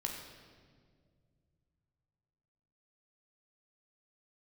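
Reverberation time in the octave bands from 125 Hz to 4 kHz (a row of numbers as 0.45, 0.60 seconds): 3.8, 2.8, 2.3, 1.6, 1.5, 1.4 seconds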